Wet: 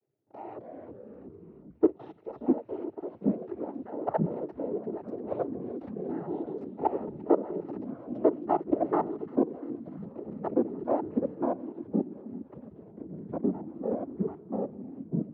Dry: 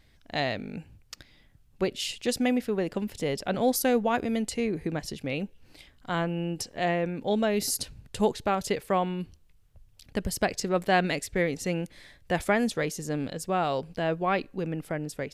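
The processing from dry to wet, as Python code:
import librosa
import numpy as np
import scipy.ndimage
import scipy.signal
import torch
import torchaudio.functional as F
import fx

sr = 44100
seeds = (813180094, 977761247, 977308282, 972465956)

y = fx.lower_of_two(x, sr, delay_ms=2.6)
y = fx.env_lowpass_down(y, sr, base_hz=2500.0, full_db=-29.0)
y = fx.peak_eq(y, sr, hz=750.0, db=-12.5, octaves=1.6, at=(3.1, 3.91))
y = y + 0.95 * np.pad(y, (int(2.6 * sr / 1000.0), 0))[:len(y)]
y = fx.dynamic_eq(y, sr, hz=1000.0, q=0.99, threshold_db=-40.0, ratio=4.0, max_db=8)
y = fx.level_steps(y, sr, step_db=18)
y = fx.filter_sweep_lowpass(y, sr, from_hz=500.0, to_hz=160.0, start_s=9.69, end_s=12.65, q=1.1)
y = fx.noise_vocoder(y, sr, seeds[0], bands=12)
y = fx.echo_pitch(y, sr, ms=175, semitones=-4, count=3, db_per_echo=-3.0)
y = fx.echo_wet_highpass(y, sr, ms=346, feedback_pct=71, hz=2500.0, wet_db=-12.0)
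y = fx.pre_swell(y, sr, db_per_s=36.0, at=(5.43, 6.13))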